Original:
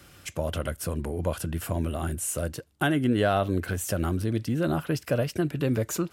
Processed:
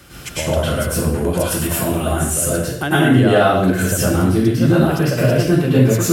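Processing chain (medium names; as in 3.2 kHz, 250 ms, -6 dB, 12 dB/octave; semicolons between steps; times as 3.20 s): 1.19–2.00 s: tilt EQ +1.5 dB/octave; in parallel at +2.5 dB: compression, threshold -36 dBFS, peak gain reduction 16 dB; on the sum: plate-style reverb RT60 0.7 s, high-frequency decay 0.9×, pre-delay 90 ms, DRR -8.5 dB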